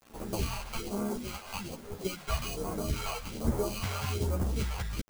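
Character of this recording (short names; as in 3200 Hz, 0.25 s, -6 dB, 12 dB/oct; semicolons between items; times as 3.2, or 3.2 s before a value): aliases and images of a low sample rate 1800 Hz, jitter 0%; phasing stages 2, 1.2 Hz, lowest notch 260–3200 Hz; a quantiser's noise floor 8-bit, dither none; a shimmering, thickened sound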